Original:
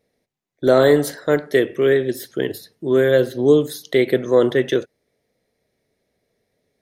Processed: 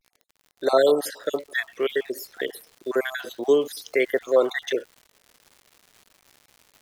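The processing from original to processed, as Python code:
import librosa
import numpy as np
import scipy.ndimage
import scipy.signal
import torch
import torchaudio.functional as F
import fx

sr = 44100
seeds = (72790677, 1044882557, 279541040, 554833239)

y = fx.spec_dropout(x, sr, seeds[0], share_pct=47)
y = scipy.signal.sosfilt(scipy.signal.butter(2, 510.0, 'highpass', fs=sr, output='sos'), y)
y = fx.vibrato(y, sr, rate_hz=0.52, depth_cents=65.0)
y = fx.dmg_crackle(y, sr, seeds[1], per_s=fx.steps((0.0, 69.0), (1.22, 270.0)), level_db=-40.0)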